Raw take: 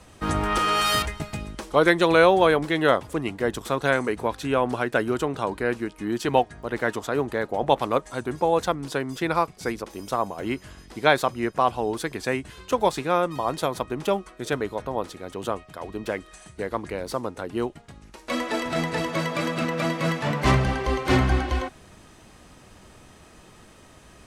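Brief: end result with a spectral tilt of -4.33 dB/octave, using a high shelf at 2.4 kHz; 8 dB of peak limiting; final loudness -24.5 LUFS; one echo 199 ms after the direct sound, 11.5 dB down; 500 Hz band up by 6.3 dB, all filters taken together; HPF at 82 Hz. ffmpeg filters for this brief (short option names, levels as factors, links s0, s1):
-af "highpass=82,equalizer=f=500:t=o:g=7,highshelf=f=2400:g=7.5,alimiter=limit=0.447:level=0:latency=1,aecho=1:1:199:0.266,volume=0.75"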